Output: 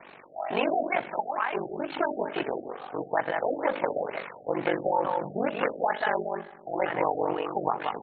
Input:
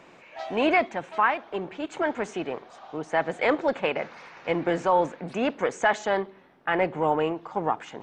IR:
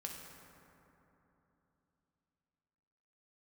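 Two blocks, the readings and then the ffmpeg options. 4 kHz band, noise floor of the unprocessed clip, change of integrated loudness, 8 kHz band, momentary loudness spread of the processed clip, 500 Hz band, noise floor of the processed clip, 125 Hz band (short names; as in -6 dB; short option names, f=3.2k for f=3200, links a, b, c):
-4.5 dB, -52 dBFS, -3.0 dB, under -35 dB, 9 LU, -2.0 dB, -50 dBFS, -4.5 dB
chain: -filter_complex "[0:a]lowshelf=f=380:g=-9,bandreject=f=60:t=h:w=6,bandreject=f=120:t=h:w=6,bandreject=f=180:t=h:w=6,bandreject=f=240:t=h:w=6,bandreject=f=300:t=h:w=6,bandreject=f=360:t=h:w=6,bandreject=f=420:t=h:w=6,bandreject=f=480:t=h:w=6,bandreject=f=540:t=h:w=6,bandreject=f=600:t=h:w=6,aecho=1:1:179:0.422,acompressor=threshold=-29dB:ratio=2.5,asplit=2[a][b];[1:a]atrim=start_sample=2205,afade=t=out:st=0.45:d=0.01,atrim=end_sample=20286,adelay=56[c];[b][c]afir=irnorm=-1:irlink=0,volume=-13.5dB[d];[a][d]amix=inputs=2:normalize=0,aeval=exprs='val(0)*sin(2*PI*24*n/s)':c=same,afftfilt=real='re*lt(b*sr/1024,760*pow(4500/760,0.5+0.5*sin(2*PI*2.2*pts/sr)))':imag='im*lt(b*sr/1024,760*pow(4500/760,0.5+0.5*sin(2*PI*2.2*pts/sr)))':win_size=1024:overlap=0.75,volume=8dB"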